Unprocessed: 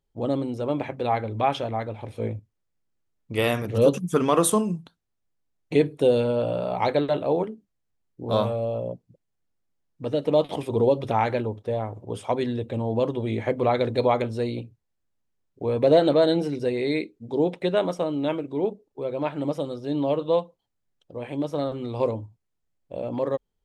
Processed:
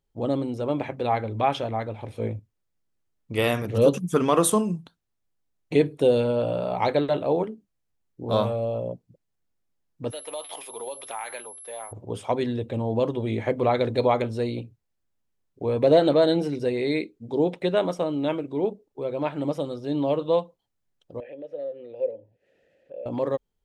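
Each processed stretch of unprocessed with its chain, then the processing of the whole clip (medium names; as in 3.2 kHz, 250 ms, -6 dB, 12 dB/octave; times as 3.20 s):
10.10–11.91 s: high-pass 1 kHz + compression 3:1, threshold -31 dBFS + whistle 11 kHz -41 dBFS
21.20–23.06 s: vowel filter e + treble shelf 2.1 kHz -7 dB + upward compressor, threshold -34 dBFS
whole clip: none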